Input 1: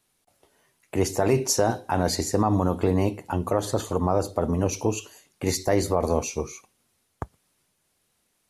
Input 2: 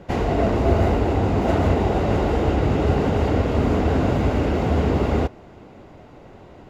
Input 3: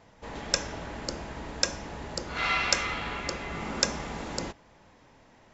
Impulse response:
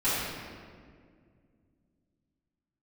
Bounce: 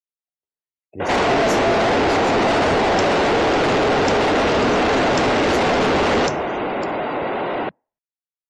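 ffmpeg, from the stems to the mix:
-filter_complex "[0:a]volume=-9dB[a];[1:a]highpass=150,bandreject=f=50:t=h:w=6,bandreject=f=100:t=h:w=6,bandreject=f=150:t=h:w=6,bandreject=f=200:t=h:w=6,asplit=2[b][c];[c]highpass=f=720:p=1,volume=39dB,asoftclip=type=tanh:threshold=-8dB[d];[b][d]amix=inputs=2:normalize=0,lowpass=f=3.8k:p=1,volume=-6dB,adelay=1000,volume=-3dB[e];[2:a]adelay=2450,volume=-6dB[f];[a][e][f]amix=inputs=3:normalize=0,afftdn=nr=31:nf=-39"

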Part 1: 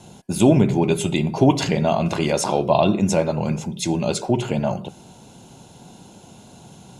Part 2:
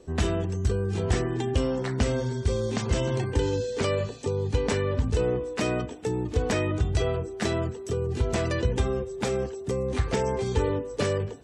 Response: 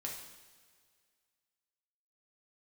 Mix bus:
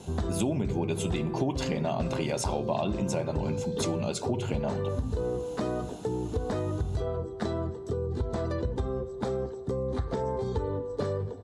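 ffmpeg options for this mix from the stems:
-filter_complex "[0:a]volume=-2dB[a];[1:a]firequalizer=gain_entry='entry(1100,0);entry(2600,-18);entry(3800,-4);entry(5700,-12)':delay=0.05:min_phase=1,volume=-1.5dB,asplit=2[b][c];[c]volume=-10dB[d];[2:a]atrim=start_sample=2205[e];[d][e]afir=irnorm=-1:irlink=0[f];[a][b][f]amix=inputs=3:normalize=0,acompressor=threshold=-27dB:ratio=4"

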